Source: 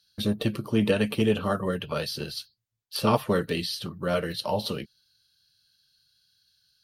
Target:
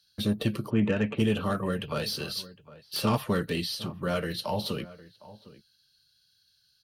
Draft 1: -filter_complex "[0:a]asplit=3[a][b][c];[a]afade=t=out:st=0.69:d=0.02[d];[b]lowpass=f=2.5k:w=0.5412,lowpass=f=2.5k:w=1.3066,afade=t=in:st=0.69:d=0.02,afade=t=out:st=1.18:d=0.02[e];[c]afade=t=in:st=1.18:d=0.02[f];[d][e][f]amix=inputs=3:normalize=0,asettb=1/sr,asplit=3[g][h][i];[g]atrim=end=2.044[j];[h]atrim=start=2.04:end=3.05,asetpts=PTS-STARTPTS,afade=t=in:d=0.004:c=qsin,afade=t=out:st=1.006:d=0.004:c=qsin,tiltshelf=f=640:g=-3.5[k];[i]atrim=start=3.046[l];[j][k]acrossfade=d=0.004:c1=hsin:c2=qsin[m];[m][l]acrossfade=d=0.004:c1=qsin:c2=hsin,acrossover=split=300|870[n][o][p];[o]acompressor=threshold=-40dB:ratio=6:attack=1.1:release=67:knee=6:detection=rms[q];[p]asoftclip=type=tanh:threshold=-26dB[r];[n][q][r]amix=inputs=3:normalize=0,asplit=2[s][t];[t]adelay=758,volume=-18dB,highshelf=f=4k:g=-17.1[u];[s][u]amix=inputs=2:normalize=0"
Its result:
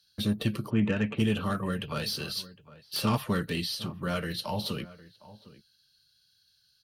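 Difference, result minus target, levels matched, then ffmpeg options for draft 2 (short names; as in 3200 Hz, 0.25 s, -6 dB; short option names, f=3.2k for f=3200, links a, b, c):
compressor: peak gain reduction +8.5 dB
-filter_complex "[0:a]asplit=3[a][b][c];[a]afade=t=out:st=0.69:d=0.02[d];[b]lowpass=f=2.5k:w=0.5412,lowpass=f=2.5k:w=1.3066,afade=t=in:st=0.69:d=0.02,afade=t=out:st=1.18:d=0.02[e];[c]afade=t=in:st=1.18:d=0.02[f];[d][e][f]amix=inputs=3:normalize=0,asettb=1/sr,asplit=3[g][h][i];[g]atrim=end=2.044[j];[h]atrim=start=2.04:end=3.05,asetpts=PTS-STARTPTS,afade=t=in:d=0.004:c=qsin,afade=t=out:st=1.006:d=0.004:c=qsin,tiltshelf=f=640:g=-3.5[k];[i]atrim=start=3.046[l];[j][k]acrossfade=d=0.004:c1=hsin:c2=qsin[m];[m][l]acrossfade=d=0.004:c1=qsin:c2=hsin,acrossover=split=300|870[n][o][p];[o]acompressor=threshold=-30dB:ratio=6:attack=1.1:release=67:knee=6:detection=rms[q];[p]asoftclip=type=tanh:threshold=-26dB[r];[n][q][r]amix=inputs=3:normalize=0,asplit=2[s][t];[t]adelay=758,volume=-18dB,highshelf=f=4k:g=-17.1[u];[s][u]amix=inputs=2:normalize=0"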